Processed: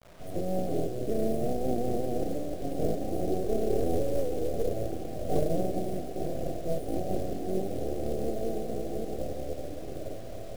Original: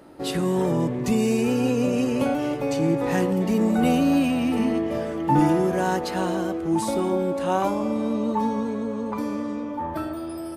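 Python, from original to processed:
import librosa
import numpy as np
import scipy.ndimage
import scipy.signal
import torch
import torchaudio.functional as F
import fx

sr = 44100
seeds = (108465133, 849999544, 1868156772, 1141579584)

p1 = fx.wiener(x, sr, points=25)
p2 = fx.rotary(p1, sr, hz=5.0)
p3 = p2 + fx.echo_diffused(p2, sr, ms=1010, feedback_pct=70, wet_db=-12.0, dry=0)
p4 = np.abs(p3)
p5 = fx.brickwall_bandstop(p4, sr, low_hz=790.0, high_hz=8500.0)
p6 = fx.quant_companded(p5, sr, bits=6)
p7 = fx.dynamic_eq(p6, sr, hz=340.0, q=1.3, threshold_db=-44.0, ratio=4.0, max_db=7)
p8 = fx.quant_dither(p7, sr, seeds[0], bits=8, dither='none')
y = p8 * 10.0 ** (-4.5 / 20.0)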